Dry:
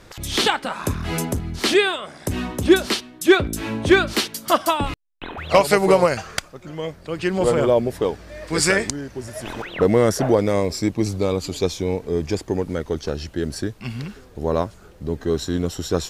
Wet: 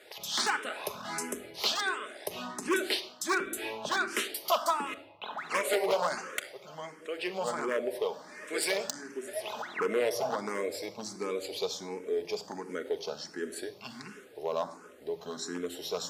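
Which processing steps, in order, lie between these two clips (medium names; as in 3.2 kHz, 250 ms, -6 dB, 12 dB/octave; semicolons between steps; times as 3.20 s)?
in parallel at +1 dB: compression 6:1, threshold -28 dBFS, peak gain reduction 18.5 dB; on the sum: simulated room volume 3300 m³, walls furnished, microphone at 1.4 m; wavefolder -7.5 dBFS; high-pass 450 Hz 12 dB/octave; barber-pole phaser +1.4 Hz; trim -8.5 dB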